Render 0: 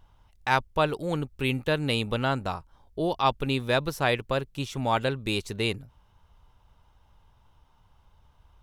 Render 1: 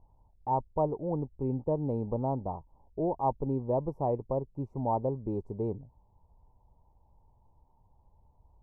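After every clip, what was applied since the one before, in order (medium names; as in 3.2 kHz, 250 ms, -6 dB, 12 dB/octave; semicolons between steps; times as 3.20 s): elliptic low-pass 940 Hz, stop band 40 dB; trim -2.5 dB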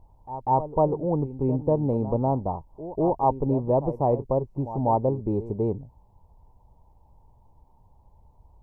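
pre-echo 194 ms -13.5 dB; trim +7 dB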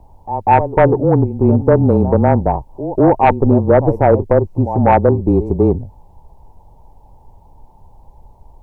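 frequency shift -23 Hz; sine folder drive 5 dB, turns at -7.5 dBFS; trim +4.5 dB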